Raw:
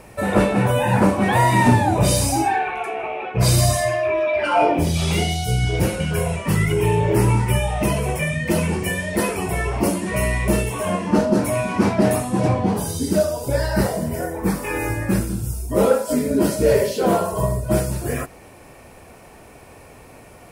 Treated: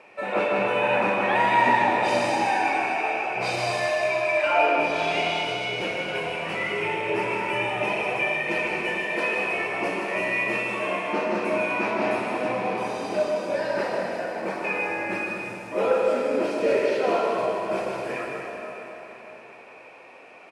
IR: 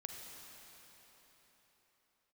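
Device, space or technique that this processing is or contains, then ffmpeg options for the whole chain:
station announcement: -filter_complex "[0:a]highpass=440,lowpass=3500,equalizer=frequency=2500:width_type=o:width=0.24:gain=10,aecho=1:1:154.5|244.9:0.501|0.316[link_01];[1:a]atrim=start_sample=2205[link_02];[link_01][link_02]afir=irnorm=-1:irlink=0"

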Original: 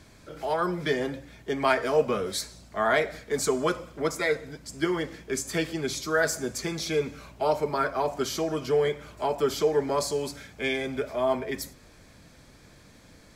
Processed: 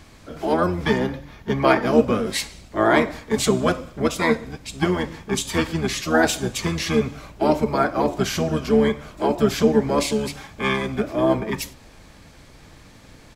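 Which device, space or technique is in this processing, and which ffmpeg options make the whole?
octave pedal: -filter_complex "[0:a]asplit=2[link_01][link_02];[link_02]asetrate=22050,aresample=44100,atempo=2,volume=-1dB[link_03];[link_01][link_03]amix=inputs=2:normalize=0,asettb=1/sr,asplit=3[link_04][link_05][link_06];[link_04]atrim=end=0.984[link_07];[link_05]atrim=start=0.98:end=1.93,asetpts=PTS-STARTPTS,afade=type=in:duration=0.004:curve=qsin,afade=type=out:start_time=0.946:duration=0.004:curve=qsin,equalizer=frequency=8200:width=3:gain=-11[link_08];[link_06]atrim=start=1.926[link_09];[link_07][link_08]acrossfade=duration=0.004:curve1=hsin:curve2=qsin[link_10];[link_10][link_09]acrossfade=duration=0.004:curve1=qsin:curve2=hsin,volume=4dB"

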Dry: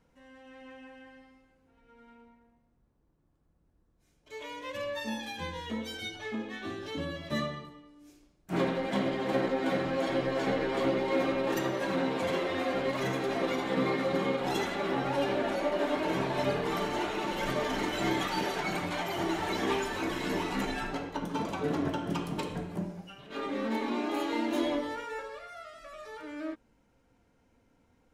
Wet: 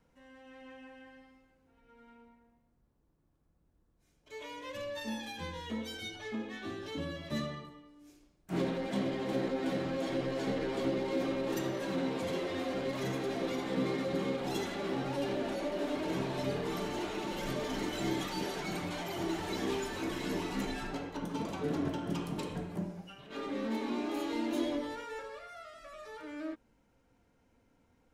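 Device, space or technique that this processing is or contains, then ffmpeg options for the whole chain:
one-band saturation: -filter_complex "[0:a]acrossover=split=500|3500[link_01][link_02][link_03];[link_02]asoftclip=type=tanh:threshold=-39dB[link_04];[link_01][link_04][link_03]amix=inputs=3:normalize=0,volume=-2dB"

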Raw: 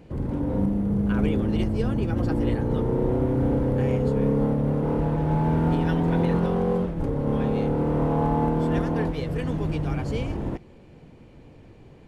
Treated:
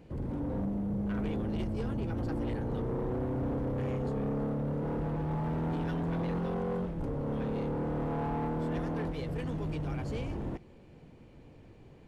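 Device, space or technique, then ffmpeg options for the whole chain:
saturation between pre-emphasis and de-emphasis: -af "highshelf=frequency=2300:gain=8.5,asoftclip=type=tanh:threshold=-23dB,highshelf=frequency=2300:gain=-8.5,volume=-5.5dB"

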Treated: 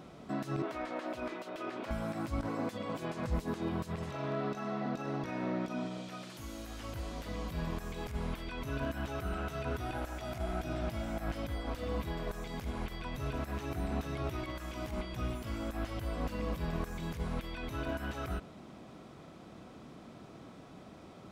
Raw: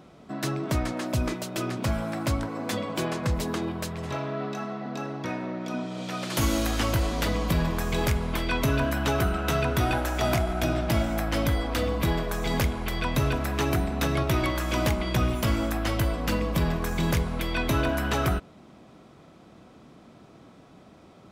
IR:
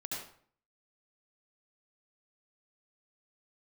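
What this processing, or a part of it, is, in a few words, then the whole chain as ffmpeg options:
de-esser from a sidechain: -filter_complex "[0:a]asettb=1/sr,asplit=3[link_01][link_02][link_03];[link_01]atrim=end=0.624[link_04];[link_02]atrim=start=0.62:end=1.91,asetpts=PTS-STARTPTS,afade=type=in:duration=0.004:curve=qsin,afade=type=out:start_time=1.286:duration=0.004:curve=qsin,acrossover=split=310 3800:gain=0.0708 1 0.2[link_05][link_06][link_07];[link_05][link_06][link_07]amix=inputs=3:normalize=0[link_08];[link_03]atrim=start=1.906[link_09];[link_04][link_08]acrossfade=duration=0.004:curve1=hsin:curve2=qsin[link_10];[link_10][link_09]acrossfade=duration=0.004:curve1=qsin:curve2=hsin,asplit=2[link_11][link_12];[link_12]highpass=4600,apad=whole_len=940054[link_13];[link_11][link_13]sidechaincompress=threshold=-57dB:ratio=4:attack=0.59:release=33"

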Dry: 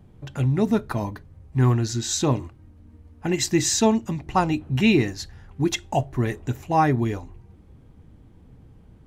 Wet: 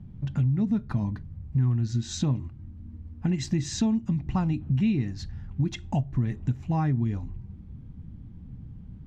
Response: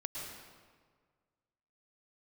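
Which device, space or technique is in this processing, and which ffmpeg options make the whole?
jukebox: -af "lowpass=5600,lowshelf=frequency=290:width_type=q:width=1.5:gain=11.5,acompressor=threshold=-18dB:ratio=4,volume=-5.5dB"

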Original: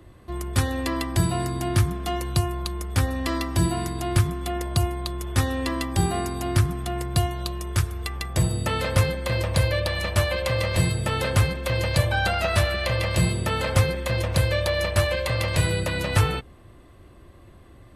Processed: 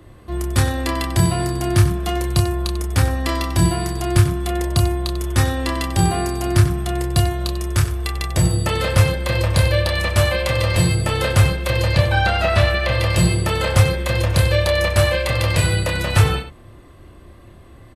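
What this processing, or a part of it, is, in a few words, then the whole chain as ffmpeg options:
slapback doubling: -filter_complex "[0:a]asettb=1/sr,asplit=3[link_01][link_02][link_03];[link_01]atrim=end=11.864[link_04];[link_02]atrim=start=11.86:end=12.95,asetpts=PTS-STARTPTS,afade=type=in:duration=0.004:curve=qsin,afade=type=out:start_time=1.086:duration=0.004:curve=qsin,acrossover=split=5000[link_05][link_06];[link_06]acompressor=threshold=-45dB:ratio=4:attack=1:release=60[link_07];[link_05][link_07]amix=inputs=2:normalize=0[link_08];[link_03]atrim=start=12.946[link_09];[link_04][link_08]acrossfade=duration=0.004:curve1=hsin:curve2=qsin[link_10];[link_10][link_09]acrossfade=duration=0.004:curve1=qsin:curve2=hsin,asplit=3[link_11][link_12][link_13];[link_12]adelay=29,volume=-5.5dB[link_14];[link_13]adelay=94,volume=-12dB[link_15];[link_11][link_14][link_15]amix=inputs=3:normalize=0,volume=4dB"

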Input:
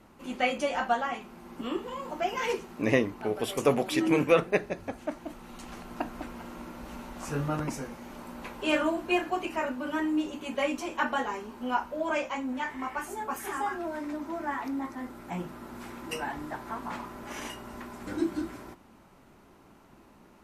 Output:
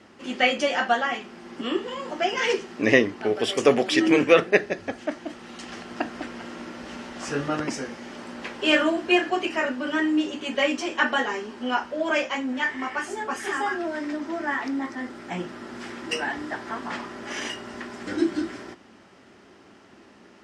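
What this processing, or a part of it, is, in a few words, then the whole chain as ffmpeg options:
car door speaker: -af "highpass=110,equalizer=frequency=150:width_type=q:width=4:gain=-8,equalizer=frequency=390:width_type=q:width=4:gain=3,equalizer=frequency=960:width_type=q:width=4:gain=-5,equalizer=frequency=1800:width_type=q:width=4:gain=7,equalizer=frequency=3100:width_type=q:width=4:gain=6,equalizer=frequency=5100:width_type=q:width=4:gain=7,lowpass=frequency=8500:width=0.5412,lowpass=frequency=8500:width=1.3066,volume=5dB"

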